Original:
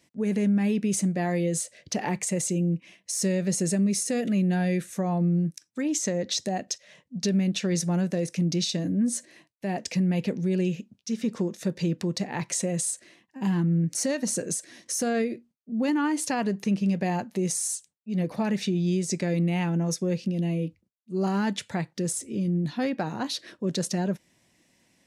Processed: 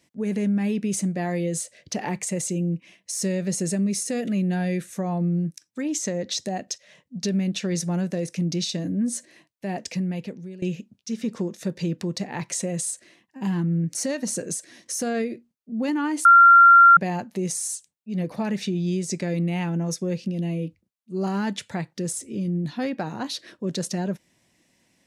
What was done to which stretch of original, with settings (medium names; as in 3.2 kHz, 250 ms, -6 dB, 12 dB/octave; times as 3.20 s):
9.81–10.62 s: fade out, to -19 dB
16.25–16.97 s: bleep 1.38 kHz -8 dBFS